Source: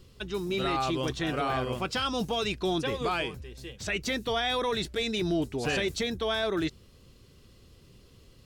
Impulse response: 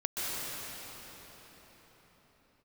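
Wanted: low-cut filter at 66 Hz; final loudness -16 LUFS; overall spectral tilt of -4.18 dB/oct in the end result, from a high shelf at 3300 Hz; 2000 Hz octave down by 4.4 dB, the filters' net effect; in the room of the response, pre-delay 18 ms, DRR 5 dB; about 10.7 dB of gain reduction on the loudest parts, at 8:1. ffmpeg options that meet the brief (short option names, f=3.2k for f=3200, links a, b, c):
-filter_complex "[0:a]highpass=66,equalizer=f=2k:t=o:g=-3,highshelf=f=3.3k:g=-8,acompressor=threshold=-37dB:ratio=8,asplit=2[a][b];[1:a]atrim=start_sample=2205,adelay=18[c];[b][c]afir=irnorm=-1:irlink=0,volume=-13dB[d];[a][d]amix=inputs=2:normalize=0,volume=23.5dB"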